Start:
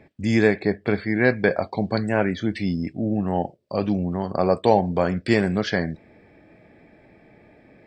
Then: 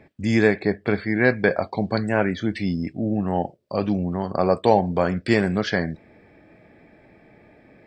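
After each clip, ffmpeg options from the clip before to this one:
-af "equalizer=f=1.3k:w=1.5:g=2"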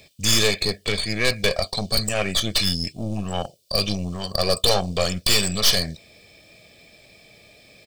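-af "aexciter=amount=9.3:drive=9.2:freq=2.8k,aeval=exprs='(tanh(5.62*val(0)+0.75)-tanh(0.75))/5.62':c=same,aecho=1:1:1.7:0.48,volume=1dB"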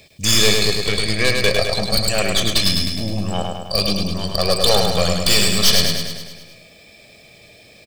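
-af "aecho=1:1:104|208|312|416|520|624|728|832:0.631|0.372|0.22|0.13|0.0765|0.0451|0.0266|0.0157,volume=2.5dB"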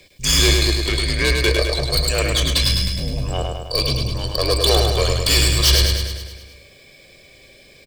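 -af "afreqshift=-68,volume=-1dB"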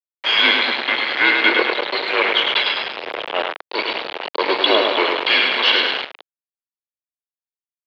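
-af "aecho=1:1:835|1670|2505:0.15|0.0539|0.0194,aeval=exprs='val(0)*gte(abs(val(0)),0.126)':c=same,highpass=f=580:t=q:w=0.5412,highpass=f=580:t=q:w=1.307,lowpass=f=3.4k:t=q:w=0.5176,lowpass=f=3.4k:t=q:w=0.7071,lowpass=f=3.4k:t=q:w=1.932,afreqshift=-110,volume=7.5dB"

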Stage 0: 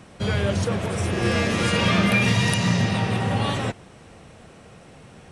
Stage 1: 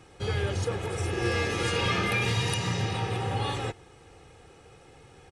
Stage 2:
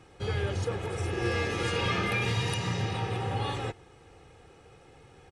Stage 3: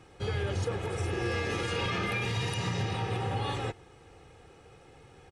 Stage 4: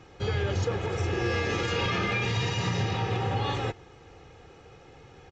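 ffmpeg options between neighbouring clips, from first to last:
-af "aecho=1:1:2.4:0.66,volume=-7dB"
-af "highshelf=f=4.9k:g=-5,volume=-1.5dB"
-af "alimiter=limit=-22dB:level=0:latency=1:release=62"
-af "aresample=16000,aresample=44100,volume=3.5dB"

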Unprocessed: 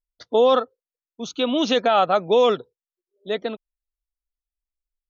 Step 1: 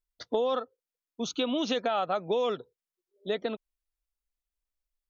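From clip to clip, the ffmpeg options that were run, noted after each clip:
-af "acompressor=threshold=-27dB:ratio=4"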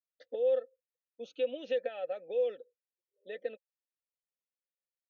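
-filter_complex "[0:a]asplit=3[a][b][c];[a]bandpass=f=530:t=q:w=8,volume=0dB[d];[b]bandpass=f=1.84k:t=q:w=8,volume=-6dB[e];[c]bandpass=f=2.48k:t=q:w=8,volume=-9dB[f];[d][e][f]amix=inputs=3:normalize=0,aecho=1:1:3.9:0.4"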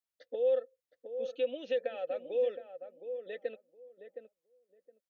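-filter_complex "[0:a]asplit=2[a][b];[b]adelay=716,lowpass=f=920:p=1,volume=-8dB,asplit=2[c][d];[d]adelay=716,lowpass=f=920:p=1,volume=0.2,asplit=2[e][f];[f]adelay=716,lowpass=f=920:p=1,volume=0.2[g];[a][c][e][g]amix=inputs=4:normalize=0"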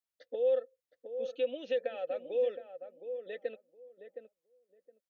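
-af anull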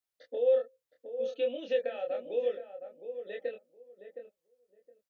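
-filter_complex "[0:a]asplit=2[a][b];[b]adelay=25,volume=-3dB[c];[a][c]amix=inputs=2:normalize=0"

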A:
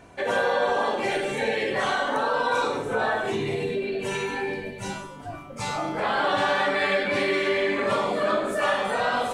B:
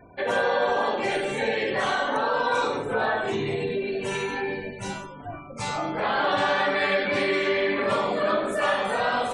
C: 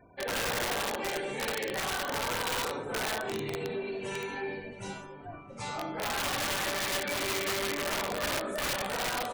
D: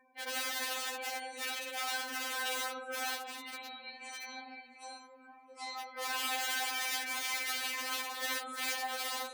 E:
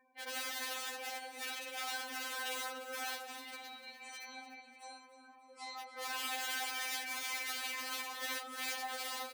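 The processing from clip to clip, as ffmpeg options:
-af "afftfilt=real='re*gte(hypot(re,im),0.00501)':imag='im*gte(hypot(re,im),0.00501)':win_size=1024:overlap=0.75"
-filter_complex "[0:a]asplit=2[a][b];[b]adelay=671,lowpass=f=1.8k:p=1,volume=-16.5dB,asplit=2[c][d];[d]adelay=671,lowpass=f=1.8k:p=1,volume=0.48,asplit=2[e][f];[f]adelay=671,lowpass=f=1.8k:p=1,volume=0.48,asplit=2[g][h];[h]adelay=671,lowpass=f=1.8k:p=1,volume=0.48[i];[a][c][e][g][i]amix=inputs=5:normalize=0,aeval=exprs='(mod(7.94*val(0)+1,2)-1)/7.94':c=same,volume=-7.5dB"
-af "highpass=f=920:p=1,afftfilt=real='re*3.46*eq(mod(b,12),0)':imag='im*3.46*eq(mod(b,12),0)':win_size=2048:overlap=0.75"
-af "aecho=1:1:295|590|885|1180:0.211|0.0972|0.0447|0.0206,volume=-4dB"

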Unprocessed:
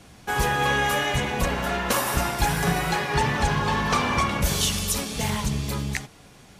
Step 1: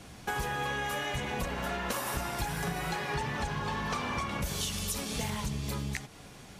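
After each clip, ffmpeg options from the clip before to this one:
-af "acompressor=threshold=-31dB:ratio=6"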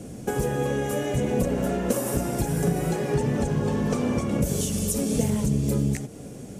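-af "equalizer=f=125:t=o:w=1:g=6,equalizer=f=250:t=o:w=1:g=9,equalizer=f=500:t=o:w=1:g=10,equalizer=f=1k:t=o:w=1:g=-9,equalizer=f=2k:t=o:w=1:g=-5,equalizer=f=4k:t=o:w=1:g=-9,equalizer=f=8k:t=o:w=1:g=6,volume=4dB"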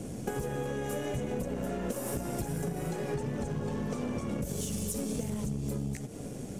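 -af "acompressor=threshold=-30dB:ratio=6,aeval=exprs='0.0891*(cos(1*acos(clip(val(0)/0.0891,-1,1)))-cos(1*PI/2))+0.00316*(cos(8*acos(clip(val(0)/0.0891,-1,1)))-cos(8*PI/2))':c=same,volume=-1dB"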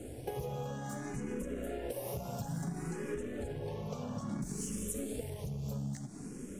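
-filter_complex "[0:a]asplit=2[a][b];[b]afreqshift=0.59[c];[a][c]amix=inputs=2:normalize=1,volume=-2dB"

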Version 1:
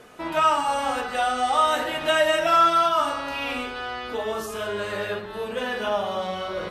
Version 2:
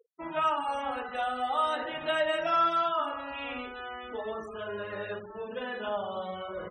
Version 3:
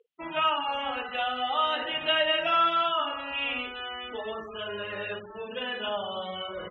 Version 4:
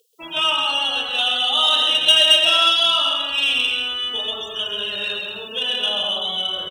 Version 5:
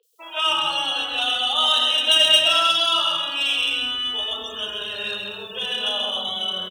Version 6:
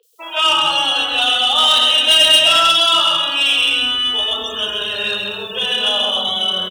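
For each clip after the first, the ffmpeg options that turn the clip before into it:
-af "afftfilt=real='re*gte(hypot(re,im),0.0282)':imag='im*gte(hypot(re,im),0.0282)':win_size=1024:overlap=0.75,highshelf=f=6.7k:g=-9.5,volume=-7.5dB"
-af "lowpass=f=3k:t=q:w=4.1"
-af "aecho=1:1:130|214.5|269.4|305.1|328.3:0.631|0.398|0.251|0.158|0.1,aexciter=amount=9:drive=9.8:freq=3.3k"
-filter_complex "[0:a]acrossover=split=440|2900[a][b][c];[c]adelay=30[d];[a]adelay=270[e];[e][b][d]amix=inputs=3:normalize=0"
-af "asoftclip=type=tanh:threshold=-13.5dB,volume=8dB"

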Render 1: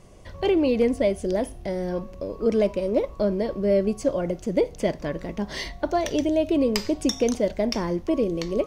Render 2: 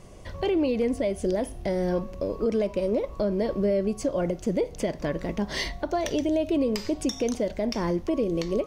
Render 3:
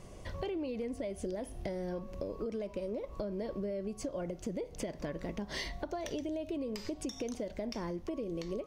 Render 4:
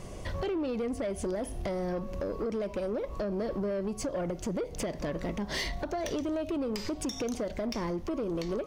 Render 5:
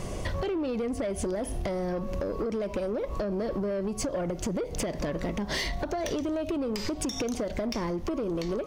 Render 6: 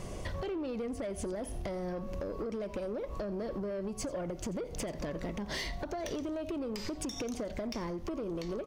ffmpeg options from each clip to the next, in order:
-af "alimiter=limit=-19.5dB:level=0:latency=1:release=192,volume=2.5dB"
-af "acompressor=threshold=-32dB:ratio=6,volume=-3dB"
-af "asoftclip=type=tanh:threshold=-34.5dB,volume=8dB"
-af "acompressor=threshold=-36dB:ratio=6,volume=8dB"
-af "aecho=1:1:88:0.112,volume=-6.5dB"

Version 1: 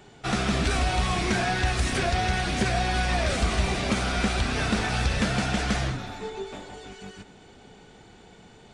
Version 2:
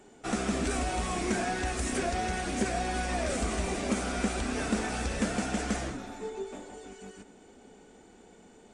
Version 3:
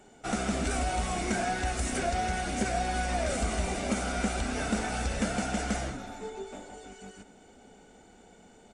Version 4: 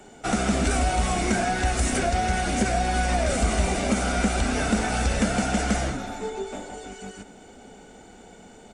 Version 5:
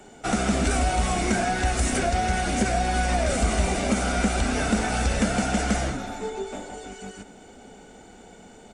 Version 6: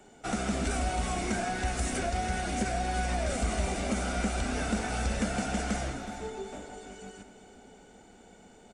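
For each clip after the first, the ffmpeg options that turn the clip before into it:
-af "equalizer=f=125:t=o:w=1:g=-10,equalizer=f=250:t=o:w=1:g=8,equalizer=f=500:t=o:w=1:g=4,equalizer=f=4k:t=o:w=1:g=-6,equalizer=f=8k:t=o:w=1:g=9,volume=-7dB"
-af "aecho=1:1:1.4:0.32"
-filter_complex "[0:a]acrossover=split=220[a][b];[b]acompressor=threshold=-32dB:ratio=2[c];[a][c]amix=inputs=2:normalize=0,volume=8dB"
-af anull
-af "aecho=1:1:371|742|1113|1484:0.224|0.0895|0.0358|0.0143,volume=-7.5dB"

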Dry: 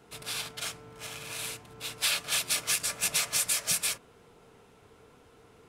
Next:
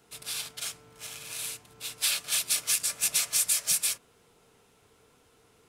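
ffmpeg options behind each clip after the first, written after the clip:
-af "highshelf=f=3.2k:g=10.5,volume=-6.5dB"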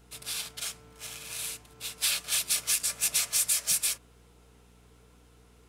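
-af "asoftclip=type=tanh:threshold=-13dB,aeval=exprs='val(0)+0.00126*(sin(2*PI*60*n/s)+sin(2*PI*2*60*n/s)/2+sin(2*PI*3*60*n/s)/3+sin(2*PI*4*60*n/s)/4+sin(2*PI*5*60*n/s)/5)':c=same"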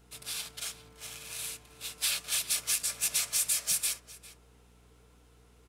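-filter_complex "[0:a]asplit=2[a][b];[b]adelay=402.3,volume=-14dB,highshelf=f=4k:g=-9.05[c];[a][c]amix=inputs=2:normalize=0,volume=-2.5dB"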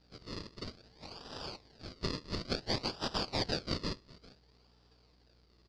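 -af "acrusher=samples=39:mix=1:aa=0.000001:lfo=1:lforange=39:lforate=0.57,lowpass=f=4.7k:t=q:w=9.9,volume=-6.5dB"

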